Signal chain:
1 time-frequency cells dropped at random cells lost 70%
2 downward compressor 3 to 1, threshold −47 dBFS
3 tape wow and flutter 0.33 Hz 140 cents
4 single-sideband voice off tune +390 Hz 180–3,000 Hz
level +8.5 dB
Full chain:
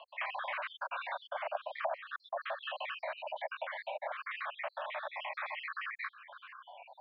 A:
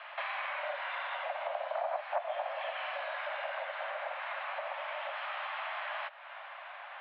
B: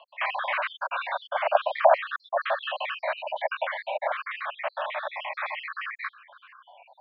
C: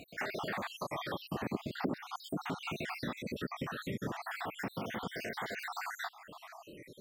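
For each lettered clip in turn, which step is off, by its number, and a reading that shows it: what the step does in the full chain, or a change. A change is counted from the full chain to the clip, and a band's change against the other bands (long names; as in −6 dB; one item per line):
1, 500 Hz band +1.5 dB
2, average gain reduction 9.0 dB
4, 4 kHz band +3.0 dB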